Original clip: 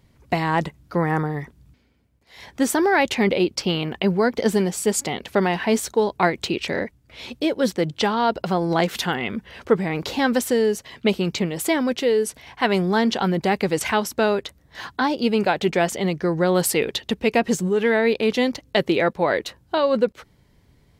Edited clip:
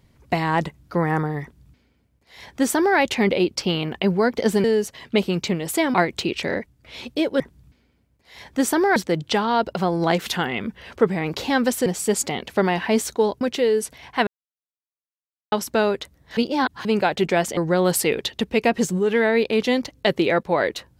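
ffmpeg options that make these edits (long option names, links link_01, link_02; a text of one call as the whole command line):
ffmpeg -i in.wav -filter_complex "[0:a]asplit=12[link_01][link_02][link_03][link_04][link_05][link_06][link_07][link_08][link_09][link_10][link_11][link_12];[link_01]atrim=end=4.642[link_13];[link_02]atrim=start=10.548:end=11.852[link_14];[link_03]atrim=start=6.188:end=7.652[link_15];[link_04]atrim=start=1.418:end=2.982[link_16];[link_05]atrim=start=7.648:end=10.552[link_17];[link_06]atrim=start=4.638:end=6.192[link_18];[link_07]atrim=start=11.848:end=12.71,asetpts=PTS-STARTPTS,afade=type=out:start_time=0.858:duration=0.004:curve=hsin[link_19];[link_08]atrim=start=12.71:end=13.96,asetpts=PTS-STARTPTS,volume=0[link_20];[link_09]atrim=start=13.96:end=14.812,asetpts=PTS-STARTPTS,afade=type=in:duration=0.004:curve=hsin[link_21];[link_10]atrim=start=14.808:end=15.292,asetpts=PTS-STARTPTS,areverse[link_22];[link_11]atrim=start=15.288:end=16.012[link_23];[link_12]atrim=start=16.268[link_24];[link_13][link_14]acrossfade=duration=0.004:curve1=hsin:curve2=hsin[link_25];[link_25][link_15]acrossfade=duration=0.004:curve1=hsin:curve2=hsin[link_26];[link_26][link_16]acrossfade=duration=0.004:curve1=hsin:curve2=hsin[link_27];[link_27][link_17]acrossfade=duration=0.004:curve1=hsin:curve2=hsin[link_28];[link_28][link_18]acrossfade=duration=0.004:curve1=hsin:curve2=hsin[link_29];[link_19][link_20][link_21]concat=n=3:v=0:a=1[link_30];[link_29][link_30]acrossfade=duration=0.004:curve1=hsin:curve2=hsin[link_31];[link_31][link_22]acrossfade=duration=0.004:curve1=hsin:curve2=hsin[link_32];[link_32][link_23]acrossfade=duration=0.004:curve1=hsin:curve2=hsin[link_33];[link_33][link_24]acrossfade=duration=0.004:curve1=hsin:curve2=hsin" out.wav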